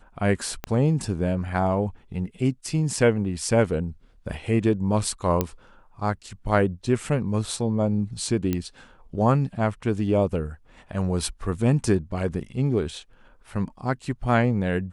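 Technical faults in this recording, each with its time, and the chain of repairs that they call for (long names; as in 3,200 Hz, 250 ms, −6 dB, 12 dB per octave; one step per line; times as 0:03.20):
0:00.64: click −14 dBFS
0:05.41: click −8 dBFS
0:08.53: click −12 dBFS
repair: click removal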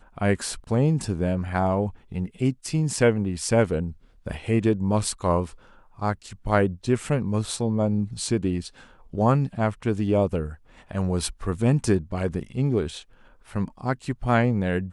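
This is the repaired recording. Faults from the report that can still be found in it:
0:00.64: click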